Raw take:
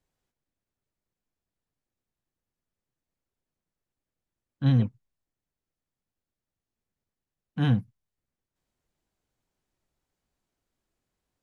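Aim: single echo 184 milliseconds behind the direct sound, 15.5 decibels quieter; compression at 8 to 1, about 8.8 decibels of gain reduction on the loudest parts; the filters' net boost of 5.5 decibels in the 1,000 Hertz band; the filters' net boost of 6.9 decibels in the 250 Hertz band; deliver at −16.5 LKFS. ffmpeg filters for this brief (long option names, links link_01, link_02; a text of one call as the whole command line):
ffmpeg -i in.wav -af "equalizer=frequency=250:width_type=o:gain=8,equalizer=frequency=1000:width_type=o:gain=7,acompressor=threshold=-22dB:ratio=8,aecho=1:1:184:0.168,volume=13.5dB" out.wav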